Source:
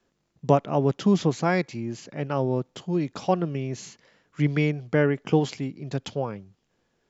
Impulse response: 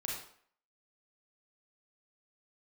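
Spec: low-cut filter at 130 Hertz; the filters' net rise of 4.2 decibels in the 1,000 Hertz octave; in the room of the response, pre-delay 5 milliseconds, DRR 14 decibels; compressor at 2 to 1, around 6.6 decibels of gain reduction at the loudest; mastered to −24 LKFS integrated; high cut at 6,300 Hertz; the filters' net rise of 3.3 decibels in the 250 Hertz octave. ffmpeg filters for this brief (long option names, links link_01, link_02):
-filter_complex "[0:a]highpass=130,lowpass=6300,equalizer=frequency=250:width_type=o:gain=5,equalizer=frequency=1000:width_type=o:gain=5.5,acompressor=threshold=-24dB:ratio=2,asplit=2[link_01][link_02];[1:a]atrim=start_sample=2205,adelay=5[link_03];[link_02][link_03]afir=irnorm=-1:irlink=0,volume=-15.5dB[link_04];[link_01][link_04]amix=inputs=2:normalize=0,volume=4dB"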